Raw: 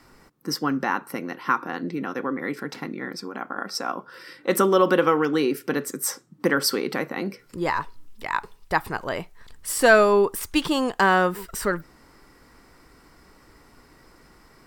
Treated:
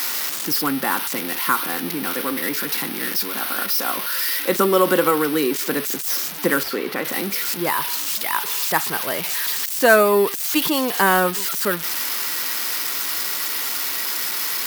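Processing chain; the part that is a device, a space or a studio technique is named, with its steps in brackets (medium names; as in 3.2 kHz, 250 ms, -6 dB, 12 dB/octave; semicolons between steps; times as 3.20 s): high-pass 140 Hz 24 dB/octave; band-stop 7.2 kHz, Q 15; budget class-D amplifier (dead-time distortion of 0.058 ms; zero-crossing glitches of -11 dBFS); 6.63–7.05 s: tone controls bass -4 dB, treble -11 dB; trim +1.5 dB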